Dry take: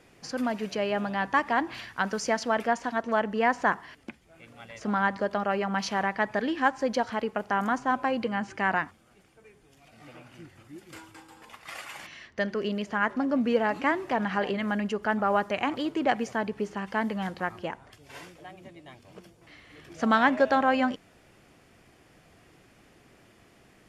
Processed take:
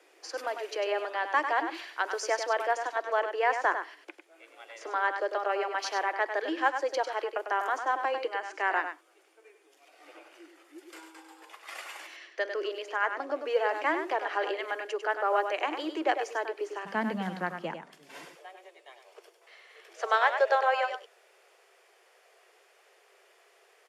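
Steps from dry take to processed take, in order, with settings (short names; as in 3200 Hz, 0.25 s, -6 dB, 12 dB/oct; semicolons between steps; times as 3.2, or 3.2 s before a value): steep high-pass 310 Hz 96 dB/oct, from 16.85 s 150 Hz, from 18.24 s 380 Hz; echo 99 ms -8 dB; gain -2 dB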